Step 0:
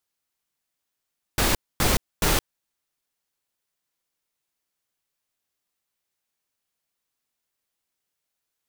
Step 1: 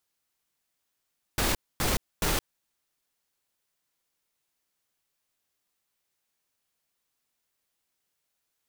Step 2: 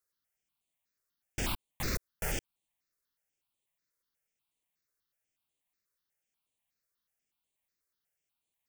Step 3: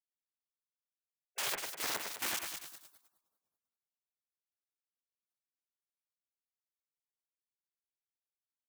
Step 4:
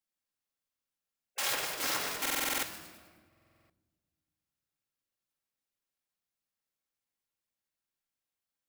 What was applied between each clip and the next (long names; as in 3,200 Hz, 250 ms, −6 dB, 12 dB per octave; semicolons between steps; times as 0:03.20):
brickwall limiter −19 dBFS, peak gain reduction 10 dB; level +2 dB
step-sequenced phaser 8.2 Hz 820–5,300 Hz; level −4.5 dB
each half-wave held at its own peak; echo with a time of its own for lows and highs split 2,100 Hz, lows 103 ms, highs 196 ms, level −5.5 dB; gate on every frequency bin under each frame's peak −20 dB weak
rectangular room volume 1,800 cubic metres, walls mixed, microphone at 2.2 metres; buffer that repeats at 0:02.21/0:03.28, samples 2,048, times 8; level +1.5 dB